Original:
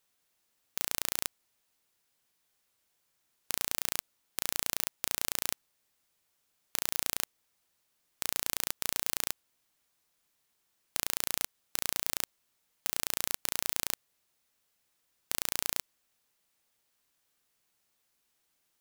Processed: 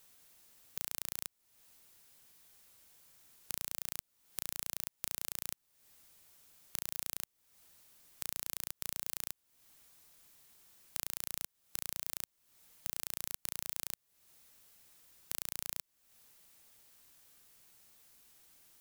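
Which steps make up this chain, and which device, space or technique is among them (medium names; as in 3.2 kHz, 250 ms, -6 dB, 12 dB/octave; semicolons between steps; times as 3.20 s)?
ASMR close-microphone chain (bass shelf 190 Hz +6 dB; compression 5:1, threshold -48 dBFS, peak gain reduction 20.5 dB; treble shelf 7.1 kHz +6 dB); trim +9 dB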